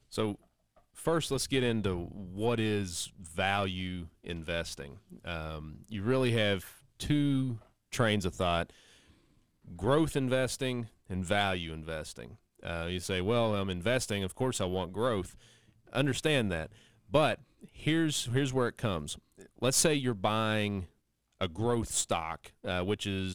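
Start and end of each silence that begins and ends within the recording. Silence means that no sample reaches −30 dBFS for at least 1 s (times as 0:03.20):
0:08.63–0:09.83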